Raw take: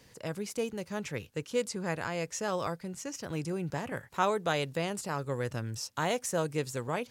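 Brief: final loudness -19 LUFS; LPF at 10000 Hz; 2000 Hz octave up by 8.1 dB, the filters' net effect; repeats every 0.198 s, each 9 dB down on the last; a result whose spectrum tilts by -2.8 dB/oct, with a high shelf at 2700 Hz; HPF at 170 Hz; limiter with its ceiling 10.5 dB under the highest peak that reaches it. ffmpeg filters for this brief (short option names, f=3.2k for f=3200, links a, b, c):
-af "highpass=170,lowpass=10k,equalizer=f=2k:t=o:g=8,highshelf=f=2.7k:g=6,alimiter=limit=-19.5dB:level=0:latency=1,aecho=1:1:198|396|594|792:0.355|0.124|0.0435|0.0152,volume=14dB"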